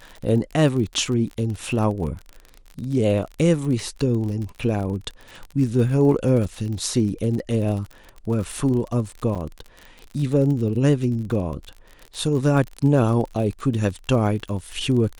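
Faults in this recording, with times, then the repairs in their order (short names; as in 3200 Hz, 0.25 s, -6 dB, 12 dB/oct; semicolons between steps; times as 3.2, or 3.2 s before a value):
crackle 39/s -29 dBFS
9.35–9.36 gap 6.9 ms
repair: de-click; interpolate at 9.35, 6.9 ms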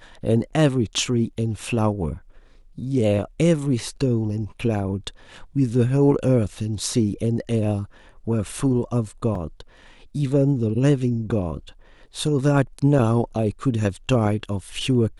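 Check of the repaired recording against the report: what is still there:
none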